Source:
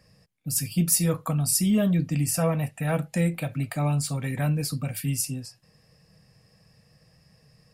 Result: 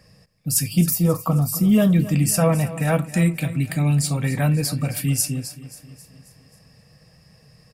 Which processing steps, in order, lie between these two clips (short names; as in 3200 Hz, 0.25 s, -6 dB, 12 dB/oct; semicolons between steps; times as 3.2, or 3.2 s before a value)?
0.9–1.71 spectral gain 1400–12000 Hz -12 dB; 3.12–4.11 band shelf 840 Hz -9 dB; on a send: feedback echo 0.268 s, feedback 54%, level -15.5 dB; on the sum: gain +6 dB